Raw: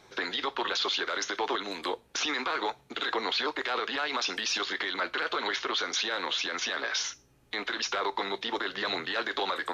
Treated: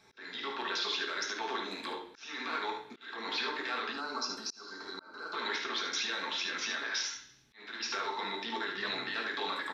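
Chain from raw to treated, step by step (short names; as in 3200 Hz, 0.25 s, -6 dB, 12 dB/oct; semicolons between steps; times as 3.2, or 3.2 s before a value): reverb RT60 0.65 s, pre-delay 3 ms, DRR 1.5 dB; spectral gain 3.93–5.33, 1600–3900 Hz -18 dB; early reflections 53 ms -10.5 dB, 74 ms -7.5 dB; auto swell 0.397 s; gain -7.5 dB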